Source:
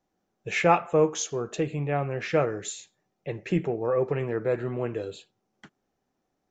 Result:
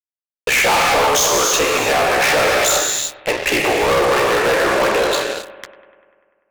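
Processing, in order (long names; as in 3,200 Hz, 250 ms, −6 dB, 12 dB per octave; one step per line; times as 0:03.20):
noise gate −38 dBFS, range −9 dB
Chebyshev band-pass filter 850–6,600 Hz, order 2
downward compressor 1.5 to 1, threshold −41 dBFS, peak gain reduction 8.5 dB
ring modulation 32 Hz
reverb whose tail is shaped and stops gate 390 ms flat, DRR 4.5 dB
fuzz pedal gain 51 dB, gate −58 dBFS
bucket-brigade delay 98 ms, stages 2,048, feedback 70%, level −17 dB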